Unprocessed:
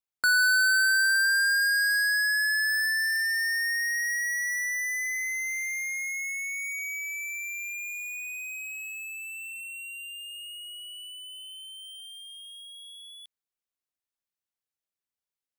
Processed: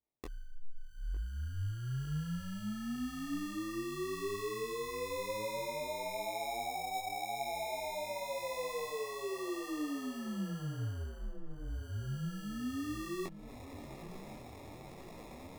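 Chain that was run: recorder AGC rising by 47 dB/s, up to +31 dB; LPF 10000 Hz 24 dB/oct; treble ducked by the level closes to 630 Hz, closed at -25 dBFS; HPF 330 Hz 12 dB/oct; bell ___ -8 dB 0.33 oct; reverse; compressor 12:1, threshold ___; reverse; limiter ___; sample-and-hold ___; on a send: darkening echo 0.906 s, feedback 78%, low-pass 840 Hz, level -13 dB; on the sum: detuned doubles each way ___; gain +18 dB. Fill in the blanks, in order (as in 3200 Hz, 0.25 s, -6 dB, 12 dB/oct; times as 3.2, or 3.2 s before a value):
1400 Hz, -52 dBFS, -43.5 dBFS, 29×, 32 cents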